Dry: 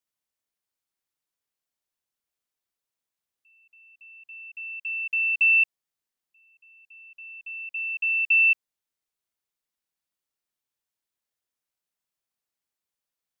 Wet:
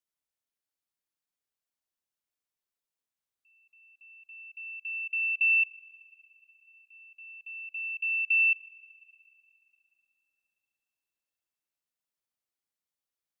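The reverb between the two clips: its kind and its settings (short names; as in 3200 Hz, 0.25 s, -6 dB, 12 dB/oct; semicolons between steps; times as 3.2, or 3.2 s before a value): FDN reverb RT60 3.1 s, high-frequency decay 1×, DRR 13 dB; gain -5 dB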